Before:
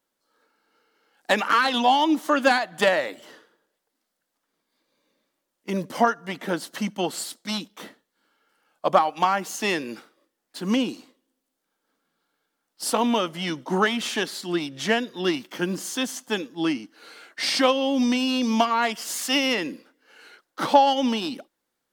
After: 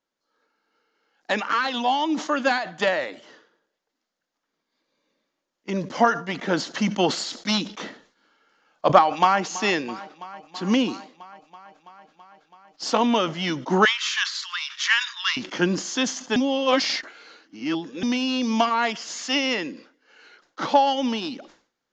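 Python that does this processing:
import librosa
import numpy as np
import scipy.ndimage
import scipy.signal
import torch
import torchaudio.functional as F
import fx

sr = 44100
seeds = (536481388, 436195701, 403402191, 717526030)

y = fx.echo_throw(x, sr, start_s=9.01, length_s=0.4, ms=330, feedback_pct=80, wet_db=-16.0)
y = fx.steep_highpass(y, sr, hz=1000.0, slope=72, at=(13.85, 15.37))
y = fx.edit(y, sr, fx.reverse_span(start_s=16.36, length_s=1.67), tone=tone)
y = fx.rider(y, sr, range_db=10, speed_s=2.0)
y = scipy.signal.sosfilt(scipy.signal.cheby1(6, 1.0, 6900.0, 'lowpass', fs=sr, output='sos'), y)
y = fx.sustainer(y, sr, db_per_s=130.0)
y = y * 10.0 ** (1.0 / 20.0)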